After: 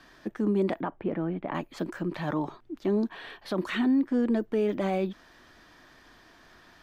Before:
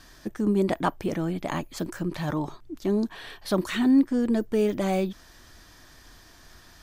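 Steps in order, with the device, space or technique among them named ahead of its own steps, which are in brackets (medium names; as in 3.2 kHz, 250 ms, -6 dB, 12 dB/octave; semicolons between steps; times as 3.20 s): DJ mixer with the lows and highs turned down (three-band isolator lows -12 dB, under 160 Hz, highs -14 dB, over 3.7 kHz; peak limiter -18 dBFS, peak gain reduction 8 dB); 0.81–1.55 s: distance through air 490 m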